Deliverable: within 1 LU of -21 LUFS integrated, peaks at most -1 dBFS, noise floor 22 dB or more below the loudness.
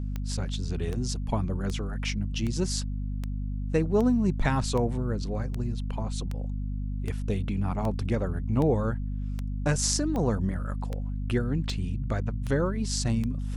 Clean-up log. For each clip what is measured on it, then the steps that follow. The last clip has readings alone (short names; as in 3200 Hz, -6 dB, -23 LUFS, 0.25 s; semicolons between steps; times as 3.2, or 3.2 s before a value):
clicks 18; hum 50 Hz; harmonics up to 250 Hz; hum level -29 dBFS; loudness -29.0 LUFS; peak -8.5 dBFS; loudness target -21.0 LUFS
-> de-click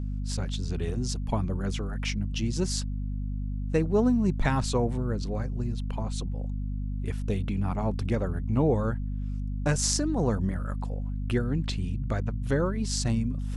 clicks 0; hum 50 Hz; harmonics up to 250 Hz; hum level -29 dBFS
-> notches 50/100/150/200/250 Hz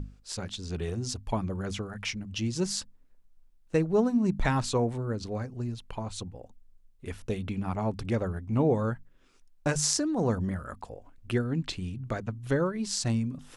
hum none; loudness -30.5 LUFS; peak -9.0 dBFS; loudness target -21.0 LUFS
-> gain +9.5 dB; limiter -1 dBFS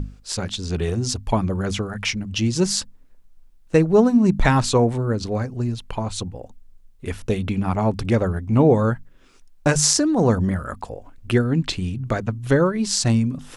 loudness -21.0 LUFS; peak -1.0 dBFS; noise floor -50 dBFS